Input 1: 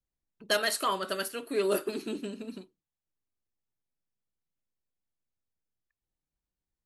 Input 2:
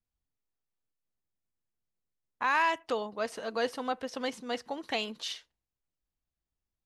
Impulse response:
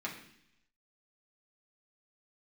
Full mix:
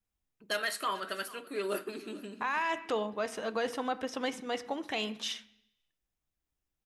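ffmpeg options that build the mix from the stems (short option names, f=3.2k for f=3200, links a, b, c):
-filter_complex "[0:a]adynamicequalizer=threshold=0.00708:dfrequency=1800:dqfactor=0.74:tfrequency=1800:tqfactor=0.74:attack=5:release=100:ratio=0.375:range=3:mode=boostabove:tftype=bell,volume=-8.5dB,asplit=3[a][b][c];[b]volume=-14dB[d];[c]volume=-18dB[e];[1:a]bandreject=f=4.4k:w=7.2,volume=0.5dB,asplit=2[f][g];[g]volume=-11dB[h];[2:a]atrim=start_sample=2205[i];[d][h]amix=inputs=2:normalize=0[j];[j][i]afir=irnorm=-1:irlink=0[k];[e]aecho=0:1:440:1[l];[a][f][k][l]amix=inputs=4:normalize=0,alimiter=limit=-22dB:level=0:latency=1:release=34"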